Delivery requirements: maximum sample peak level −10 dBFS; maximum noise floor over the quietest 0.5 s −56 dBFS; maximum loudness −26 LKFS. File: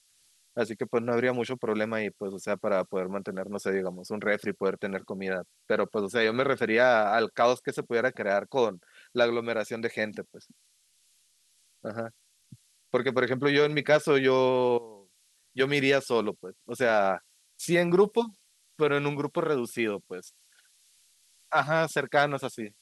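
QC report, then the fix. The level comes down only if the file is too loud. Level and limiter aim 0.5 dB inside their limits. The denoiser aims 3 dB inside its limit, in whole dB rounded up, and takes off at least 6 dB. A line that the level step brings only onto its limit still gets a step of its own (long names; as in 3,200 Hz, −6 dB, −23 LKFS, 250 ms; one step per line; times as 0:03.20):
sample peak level −8.5 dBFS: out of spec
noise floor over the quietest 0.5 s −66 dBFS: in spec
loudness −27.5 LKFS: in spec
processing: brickwall limiter −10.5 dBFS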